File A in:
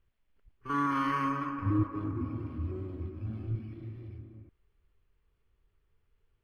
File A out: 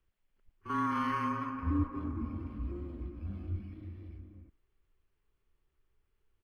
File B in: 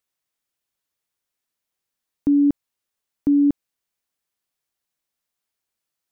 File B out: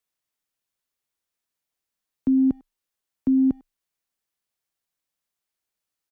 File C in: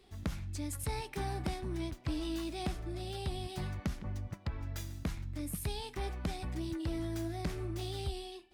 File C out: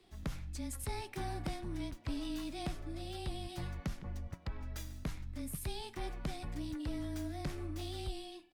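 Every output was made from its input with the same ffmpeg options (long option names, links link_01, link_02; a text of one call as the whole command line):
ffmpeg -i in.wav -filter_complex "[0:a]afreqshift=-22,asplit=2[link_01][link_02];[link_02]adelay=100,highpass=300,lowpass=3400,asoftclip=type=hard:threshold=-21dB,volume=-23dB[link_03];[link_01][link_03]amix=inputs=2:normalize=0,volume=-2.5dB" out.wav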